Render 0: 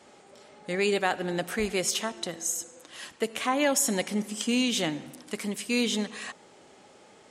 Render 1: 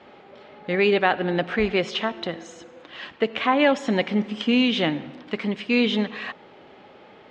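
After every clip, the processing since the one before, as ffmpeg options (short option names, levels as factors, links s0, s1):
-af "lowpass=f=3500:w=0.5412,lowpass=f=3500:w=1.3066,volume=2.11"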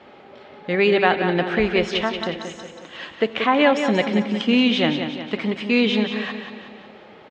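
-af "aecho=1:1:182|364|546|728|910|1092:0.398|0.207|0.108|0.056|0.0291|0.0151,volume=1.26"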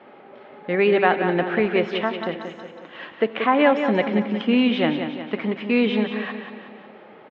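-af "highpass=160,lowpass=2300"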